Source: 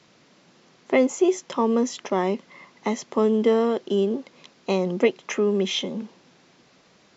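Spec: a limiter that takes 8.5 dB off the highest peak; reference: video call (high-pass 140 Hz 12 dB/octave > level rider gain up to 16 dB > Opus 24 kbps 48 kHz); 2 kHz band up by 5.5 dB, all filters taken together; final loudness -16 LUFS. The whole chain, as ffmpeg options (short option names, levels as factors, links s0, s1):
-af "equalizer=f=2000:t=o:g=6,alimiter=limit=0.211:level=0:latency=1,highpass=140,dynaudnorm=m=6.31,volume=2.99" -ar 48000 -c:a libopus -b:a 24k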